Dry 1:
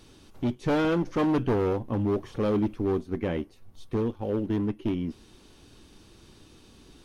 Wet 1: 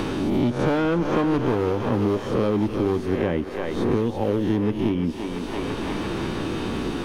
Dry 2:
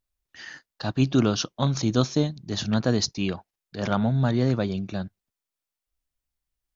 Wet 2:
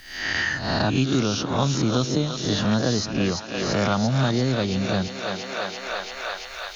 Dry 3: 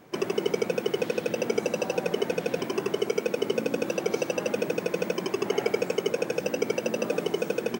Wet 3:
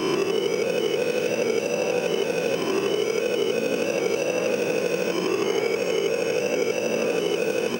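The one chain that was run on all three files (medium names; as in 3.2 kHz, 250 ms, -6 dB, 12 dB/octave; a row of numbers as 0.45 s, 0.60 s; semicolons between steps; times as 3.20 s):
reverse spectral sustain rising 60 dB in 0.58 s; thinning echo 339 ms, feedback 63%, high-pass 540 Hz, level -9 dB; three bands compressed up and down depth 100%; normalise loudness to -24 LUFS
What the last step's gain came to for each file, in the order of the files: +3.0 dB, 0.0 dB, -0.5 dB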